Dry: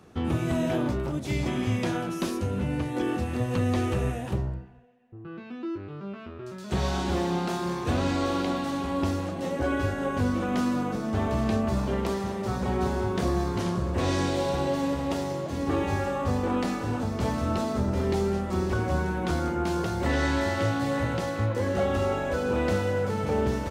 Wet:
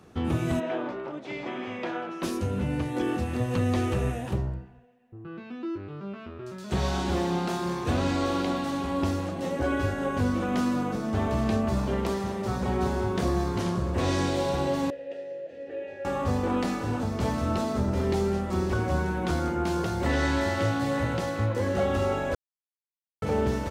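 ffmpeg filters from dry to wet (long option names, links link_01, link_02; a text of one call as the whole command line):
ffmpeg -i in.wav -filter_complex "[0:a]asplit=3[link_01][link_02][link_03];[link_01]afade=type=out:start_time=0.59:duration=0.02[link_04];[link_02]highpass=390,lowpass=2700,afade=type=in:start_time=0.59:duration=0.02,afade=type=out:start_time=2.22:duration=0.02[link_05];[link_03]afade=type=in:start_time=2.22:duration=0.02[link_06];[link_04][link_05][link_06]amix=inputs=3:normalize=0,asettb=1/sr,asplit=3[link_07][link_08][link_09];[link_07]atrim=end=14.904[link_10];[link_08]atrim=start=14.9:end=16.05,asetpts=PTS-STARTPTS,afade=type=in:duration=0.004:curve=qsin,afade=type=out:start_time=1.146:duration=0.004:curve=qsin,asplit=3[link_11][link_12][link_13];[link_11]bandpass=frequency=530:width_type=q:width=8,volume=0dB[link_14];[link_12]bandpass=frequency=1840:width_type=q:width=8,volume=-6dB[link_15];[link_13]bandpass=frequency=2480:width_type=q:width=8,volume=-9dB[link_16];[link_14][link_15][link_16]amix=inputs=3:normalize=0[link_17];[link_09]atrim=start=16.046[link_18];[link_10][link_17]acrossfade=duration=0.004:curve1=hsin:curve2=qsin[link_19];[link_19][link_18]acrossfade=duration=0.004:curve1=qsin:curve2=hsin,asplit=3[link_20][link_21][link_22];[link_20]atrim=end=22.35,asetpts=PTS-STARTPTS,afade=type=out:start_time=22.346:duration=0.004:curve=hsin[link_23];[link_21]atrim=start=22.35:end=23.22,asetpts=PTS-STARTPTS,volume=0[link_24];[link_22]atrim=start=23.22,asetpts=PTS-STARTPTS,afade=type=in:duration=0.004:curve=hsin[link_25];[link_23][link_24][link_25]concat=n=3:v=0:a=1" out.wav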